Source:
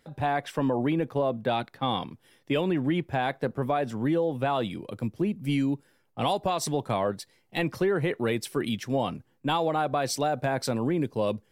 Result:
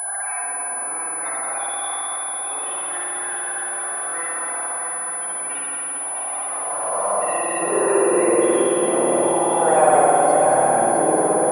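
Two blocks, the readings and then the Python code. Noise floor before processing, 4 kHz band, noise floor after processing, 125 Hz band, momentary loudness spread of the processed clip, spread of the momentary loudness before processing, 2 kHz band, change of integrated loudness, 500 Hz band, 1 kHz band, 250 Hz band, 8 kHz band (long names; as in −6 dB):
−67 dBFS, −3.0 dB, −27 dBFS, −9.0 dB, 8 LU, 5 LU, +7.0 dB, +8.5 dB, +8.5 dB, +10.0 dB, +1.5 dB, +22.0 dB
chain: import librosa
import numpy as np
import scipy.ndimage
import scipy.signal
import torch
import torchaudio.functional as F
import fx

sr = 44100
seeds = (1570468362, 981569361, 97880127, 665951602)

p1 = fx.spec_steps(x, sr, hold_ms=400)
p2 = fx.notch(p1, sr, hz=1100.0, q=19.0)
p3 = fx.leveller(p2, sr, passes=5)
p4 = fx.level_steps(p3, sr, step_db=21)
p5 = p3 + F.gain(torch.from_numpy(p4), -2.5).numpy()
p6 = fx.spec_topn(p5, sr, count=32)
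p7 = fx.filter_sweep_highpass(p6, sr, from_hz=1600.0, to_hz=460.0, start_s=6.37, end_s=7.33, q=1.2)
p8 = p7 + fx.echo_heads(p7, sr, ms=218, heads='first and third', feedback_pct=72, wet_db=-7.5, dry=0)
p9 = fx.rev_spring(p8, sr, rt60_s=2.1, pass_ms=(53,), chirp_ms=70, drr_db=-5.0)
p10 = fx.pwm(p9, sr, carrier_hz=10000.0)
y = F.gain(torch.from_numpy(p10), -5.0).numpy()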